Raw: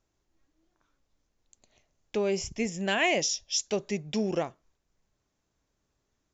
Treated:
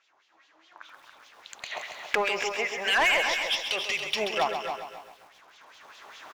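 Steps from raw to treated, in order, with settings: recorder AGC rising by 12 dB/s; 2.49–3.62 s: three-band isolator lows -13 dB, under 480 Hz, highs -21 dB, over 3.4 kHz; in parallel at -0.5 dB: compression, threshold -37 dBFS, peak gain reduction 18 dB; on the sum: LFO band-pass sine 4.9 Hz 850–3500 Hz; overdrive pedal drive 19 dB, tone 4.2 kHz, clips at -20.5 dBFS; on a send: feedback delay 281 ms, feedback 19%, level -8 dB; on the sum: bit-crushed delay 132 ms, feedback 55%, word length 10-bit, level -7.5 dB; trim +5 dB

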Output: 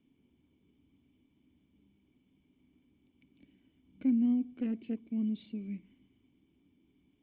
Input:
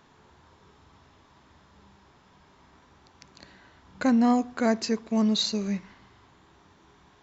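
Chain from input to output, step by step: harmonic-percussive split percussive +4 dB; cascade formant filter i; 4.48–4.97 s: loudspeaker Doppler distortion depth 0.22 ms; trim -3.5 dB

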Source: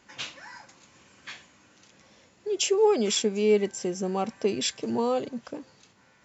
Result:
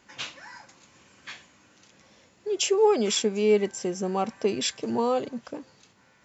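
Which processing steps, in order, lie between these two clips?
dynamic bell 1.1 kHz, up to +3 dB, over -41 dBFS, Q 0.82

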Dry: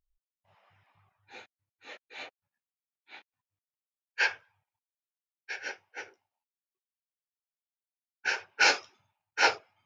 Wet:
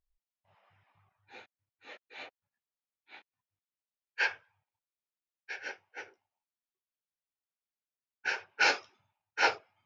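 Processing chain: distance through air 80 m; trim -2 dB

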